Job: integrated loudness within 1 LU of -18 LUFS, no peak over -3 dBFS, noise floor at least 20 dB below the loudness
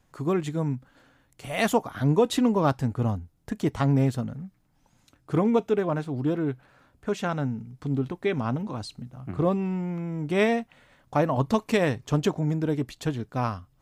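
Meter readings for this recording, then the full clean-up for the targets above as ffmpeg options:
loudness -26.5 LUFS; peak level -10.5 dBFS; loudness target -18.0 LUFS
-> -af "volume=2.66,alimiter=limit=0.708:level=0:latency=1"

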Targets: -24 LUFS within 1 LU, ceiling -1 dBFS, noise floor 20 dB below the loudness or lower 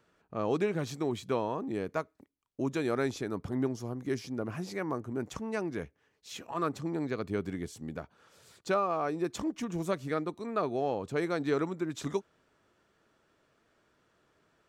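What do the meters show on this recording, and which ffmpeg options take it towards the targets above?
loudness -34.0 LUFS; peak level -17.5 dBFS; loudness target -24.0 LUFS
-> -af "volume=3.16"

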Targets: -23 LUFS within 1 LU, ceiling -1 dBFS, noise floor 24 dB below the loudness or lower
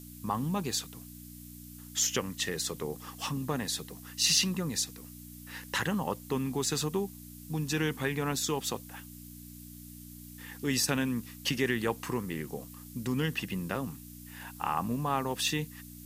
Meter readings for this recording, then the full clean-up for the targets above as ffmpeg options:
hum 60 Hz; highest harmonic 300 Hz; hum level -46 dBFS; noise floor -48 dBFS; noise floor target -56 dBFS; loudness -32.0 LUFS; peak level -11.5 dBFS; loudness target -23.0 LUFS
-> -af "bandreject=f=60:t=h:w=4,bandreject=f=120:t=h:w=4,bandreject=f=180:t=h:w=4,bandreject=f=240:t=h:w=4,bandreject=f=300:t=h:w=4"
-af "afftdn=nr=8:nf=-48"
-af "volume=2.82"

